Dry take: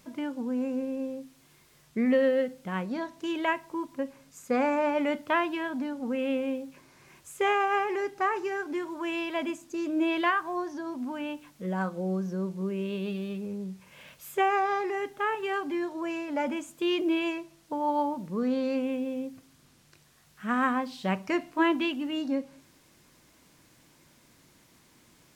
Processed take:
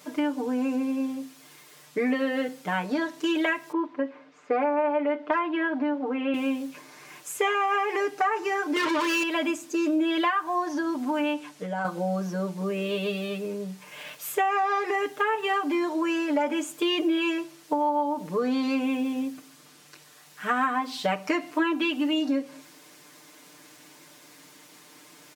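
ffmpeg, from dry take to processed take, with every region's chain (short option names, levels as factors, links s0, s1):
-filter_complex "[0:a]asettb=1/sr,asplit=3[s0][s1][s2];[s0]atrim=end=3.724[s3];[s1]atrim=start=3.72:end=6.34,asetpts=PTS-STARTPTS,afade=t=in:d=0.004:c=qsin,afade=t=out:st=2.616:d=0.004:c=qsin,aemphasis=mode=reproduction:type=75kf,asoftclip=type=hard:threshold=0.15,highpass=250,lowpass=3100[s4];[s2]atrim=start=6.336[s5];[s3][s4]acrossfade=d=0.004:c1=hsin:c2=qsin[s6];[s6][s5]acrossfade=d=0.004:c1=qsin:c2=hsin,asettb=1/sr,asplit=3[s7][s8][s9];[s7]atrim=end=8.764[s10];[s8]atrim=start=8.76:end=9.23,asetpts=PTS-STARTPTS,afade=t=in:d=0.004:c=qsin,afade=t=out:st=0.466:d=0.004:c=qsin,bass=f=250:g=-4,treble=f=4000:g=-14,asplit=2[s11][s12];[s12]highpass=f=720:p=1,volume=56.2,asoftclip=type=tanh:threshold=0.075[s13];[s11][s13]amix=inputs=2:normalize=0,lowpass=f=3600:p=1,volume=0.501,asuperstop=centerf=780:order=4:qfactor=3.3[s14];[s9]atrim=start=9.226[s15];[s10][s14]acrossfade=d=0.004:c1=hsin:c2=qsin[s16];[s16][s15]acrossfade=d=0.004:c1=qsin:c2=hsin,asettb=1/sr,asplit=3[s17][s18][s19];[s17]atrim=end=11.334[s20];[s18]atrim=start=11.33:end=11.85,asetpts=PTS-STARTPTS,afade=t=in:d=0.004:c=qsin,afade=t=out:st=0.516:d=0.004:c=qsin,lowpass=9800,acompressor=threshold=0.0224:ratio=4:attack=3.2:release=140:knee=1:detection=peak[s21];[s19]atrim=start=11.846[s22];[s20][s21]acrossfade=d=0.004:c1=hsin:c2=qsin[s23];[s23][s22]acrossfade=d=0.004:c1=qsin:c2=hsin,highpass=290,aecho=1:1:6.7:0.99,acompressor=threshold=0.0355:ratio=6,volume=2.24"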